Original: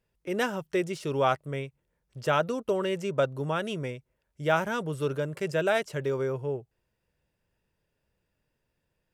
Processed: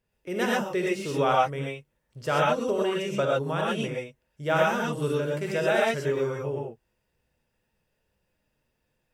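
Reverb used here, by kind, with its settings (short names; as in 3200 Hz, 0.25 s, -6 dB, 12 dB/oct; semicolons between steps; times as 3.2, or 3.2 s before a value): non-linear reverb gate 0.15 s rising, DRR -4 dB; gain -2 dB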